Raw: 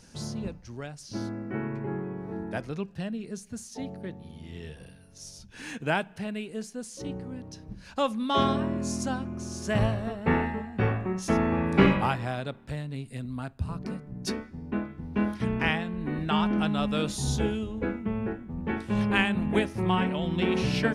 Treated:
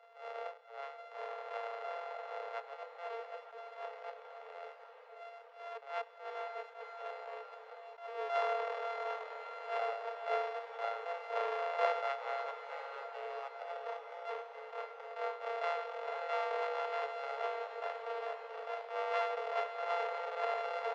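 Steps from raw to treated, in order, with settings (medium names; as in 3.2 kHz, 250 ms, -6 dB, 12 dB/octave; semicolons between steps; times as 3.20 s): sorted samples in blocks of 64 samples; Chebyshev high-pass 440 Hz, order 10; peaking EQ 550 Hz -6.5 dB 0.32 oct; in parallel at -1.5 dB: compression, threshold -39 dBFS, peak gain reduction 19 dB; on the sum: tape spacing loss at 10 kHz 45 dB; on a send: echo that smears into a reverb 538 ms, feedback 74%, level -11 dB; on the sum: attacks held to a fixed rise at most 130 dB/s; trim -2.5 dB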